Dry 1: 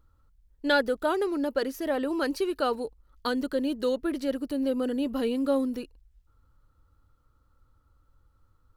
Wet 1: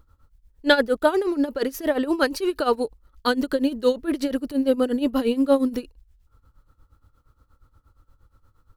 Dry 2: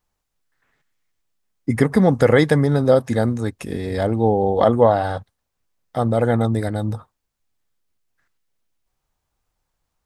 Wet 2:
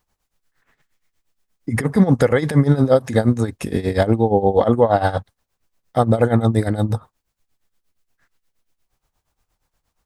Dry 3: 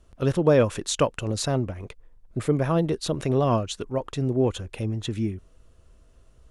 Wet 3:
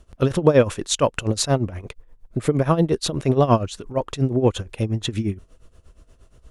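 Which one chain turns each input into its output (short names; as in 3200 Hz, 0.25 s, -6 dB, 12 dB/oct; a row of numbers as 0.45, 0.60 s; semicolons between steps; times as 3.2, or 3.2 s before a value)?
limiter -11 dBFS; tremolo 8.5 Hz, depth 82%; normalise peaks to -3 dBFS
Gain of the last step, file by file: +9.5, +8.0, +8.0 dB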